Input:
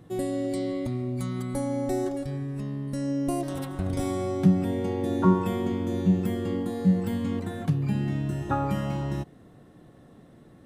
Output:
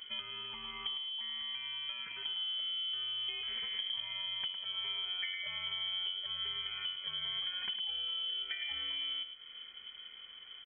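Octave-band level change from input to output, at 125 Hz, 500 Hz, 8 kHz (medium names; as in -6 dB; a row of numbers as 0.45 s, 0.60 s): under -35 dB, -32.0 dB, under -35 dB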